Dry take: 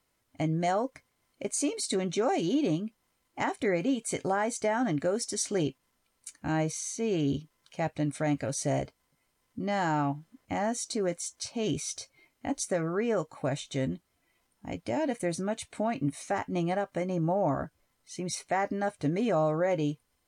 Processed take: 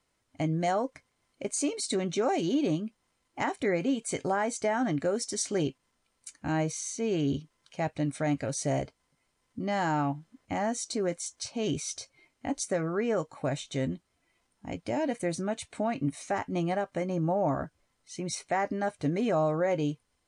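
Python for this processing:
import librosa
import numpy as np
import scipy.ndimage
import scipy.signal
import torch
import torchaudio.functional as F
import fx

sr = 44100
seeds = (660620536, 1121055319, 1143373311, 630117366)

y = scipy.signal.sosfilt(scipy.signal.butter(4, 10000.0, 'lowpass', fs=sr, output='sos'), x)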